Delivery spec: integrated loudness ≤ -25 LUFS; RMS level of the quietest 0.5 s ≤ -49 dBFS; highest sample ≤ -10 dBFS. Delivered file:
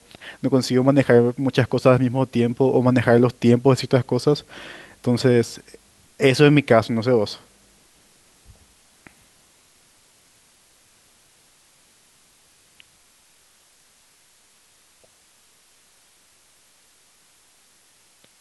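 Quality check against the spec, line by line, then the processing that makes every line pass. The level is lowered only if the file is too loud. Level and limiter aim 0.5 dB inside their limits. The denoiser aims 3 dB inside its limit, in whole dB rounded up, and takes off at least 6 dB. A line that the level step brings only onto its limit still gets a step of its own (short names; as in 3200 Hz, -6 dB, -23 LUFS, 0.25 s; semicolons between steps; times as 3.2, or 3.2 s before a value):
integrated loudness -18.5 LUFS: fail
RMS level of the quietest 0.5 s -57 dBFS: OK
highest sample -2.0 dBFS: fail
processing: gain -7 dB; limiter -10.5 dBFS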